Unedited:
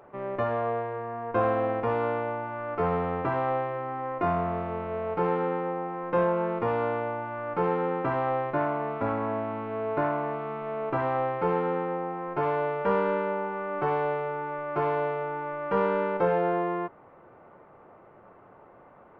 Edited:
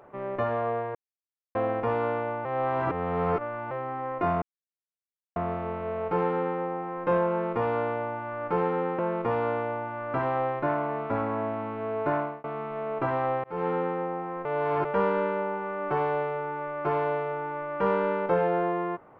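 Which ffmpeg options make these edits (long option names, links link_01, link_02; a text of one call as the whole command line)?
ffmpeg -i in.wav -filter_complex "[0:a]asplit=12[link_01][link_02][link_03][link_04][link_05][link_06][link_07][link_08][link_09][link_10][link_11][link_12];[link_01]atrim=end=0.95,asetpts=PTS-STARTPTS,afade=type=out:start_time=0.946:duration=0.004:curve=hsin[link_13];[link_02]atrim=start=0.95:end=1.55,asetpts=PTS-STARTPTS,volume=0[link_14];[link_03]atrim=start=1.55:end=2.452,asetpts=PTS-STARTPTS,afade=type=in:duration=0.004:curve=hsin[link_15];[link_04]atrim=start=2.448:end=3.712,asetpts=PTS-STARTPTS,areverse[link_16];[link_05]atrim=start=3.708:end=4.42,asetpts=PTS-STARTPTS,afade=type=out:start_time=0.708:duration=0.004:curve=hsin,apad=pad_dur=0.94[link_17];[link_06]atrim=start=4.42:end=8.052,asetpts=PTS-STARTPTS,afade=type=in:duration=0.004:curve=hsin[link_18];[link_07]atrim=start=6.358:end=7.512[link_19];[link_08]atrim=start=8.048:end=10.35,asetpts=PTS-STARTPTS,afade=type=out:start_time=2.052:duration=0.25[link_20];[link_09]atrim=start=10.35:end=11.35,asetpts=PTS-STARTPTS,afade=type=in:duration=0.004:curve=hsin,afade=type=out:start_time=0.996:duration=0.004:curve=hsin[link_21];[link_10]atrim=start=11.35:end=12.362,asetpts=PTS-STARTPTS,afade=type=in:duration=0.26[link_22];[link_11]atrim=start=12.358:end=12.762,asetpts=PTS-STARTPTS,areverse[link_23];[link_12]atrim=start=12.758[link_24];[link_13][link_14][link_15]concat=n=3:v=0:a=1[link_25];[link_25][link_16]acrossfade=duration=0.004:curve1=hsin:curve2=hsin[link_26];[link_17][link_18]concat=n=2:v=0:a=1[link_27];[link_26][link_27]acrossfade=duration=0.004:curve1=hsin:curve2=hsin[link_28];[link_28][link_19]acrossfade=duration=0.004:curve1=hsin:curve2=hsin[link_29];[link_20][link_21][link_22]concat=n=3:v=0:a=1[link_30];[link_29][link_30]acrossfade=duration=0.004:curve1=hsin:curve2=hsin[link_31];[link_31][link_23]acrossfade=duration=0.004:curve1=hsin:curve2=hsin[link_32];[link_32][link_24]acrossfade=duration=0.004:curve1=hsin:curve2=hsin" out.wav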